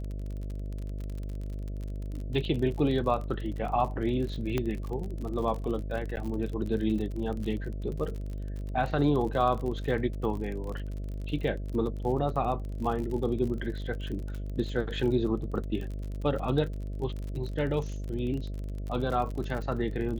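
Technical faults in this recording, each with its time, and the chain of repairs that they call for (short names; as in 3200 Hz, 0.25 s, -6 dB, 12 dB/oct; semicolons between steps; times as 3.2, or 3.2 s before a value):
buzz 50 Hz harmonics 13 -35 dBFS
crackle 44/s -35 dBFS
4.58 pop -16 dBFS
6.16–6.17 gap 9.6 ms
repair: de-click; de-hum 50 Hz, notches 13; interpolate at 6.16, 9.6 ms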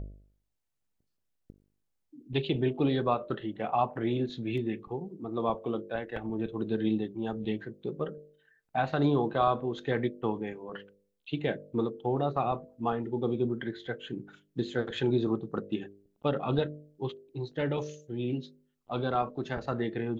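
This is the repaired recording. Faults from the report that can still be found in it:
4.58 pop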